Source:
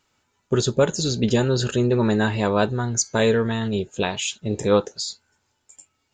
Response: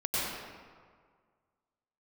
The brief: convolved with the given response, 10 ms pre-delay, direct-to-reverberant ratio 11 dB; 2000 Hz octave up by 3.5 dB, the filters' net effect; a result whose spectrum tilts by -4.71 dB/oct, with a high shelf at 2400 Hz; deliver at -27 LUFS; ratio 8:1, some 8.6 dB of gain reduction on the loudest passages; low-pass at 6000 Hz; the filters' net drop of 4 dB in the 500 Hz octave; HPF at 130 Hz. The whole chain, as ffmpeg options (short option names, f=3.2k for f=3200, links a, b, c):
-filter_complex "[0:a]highpass=130,lowpass=6k,equalizer=f=500:t=o:g=-5,equalizer=f=2k:t=o:g=8,highshelf=f=2.4k:g=-5.5,acompressor=threshold=-25dB:ratio=8,asplit=2[a][b];[1:a]atrim=start_sample=2205,adelay=10[c];[b][c]afir=irnorm=-1:irlink=0,volume=-20dB[d];[a][d]amix=inputs=2:normalize=0,volume=3dB"